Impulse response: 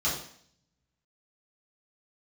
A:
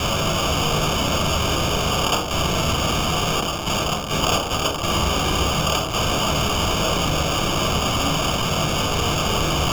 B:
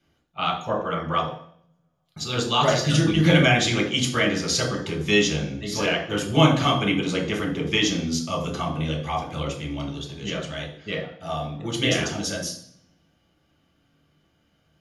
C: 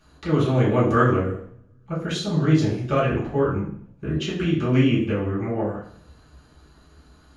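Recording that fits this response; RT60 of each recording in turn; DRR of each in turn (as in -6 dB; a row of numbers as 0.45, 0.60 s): C; 0.60, 0.60, 0.60 s; 7.5, -1.0, -9.5 dB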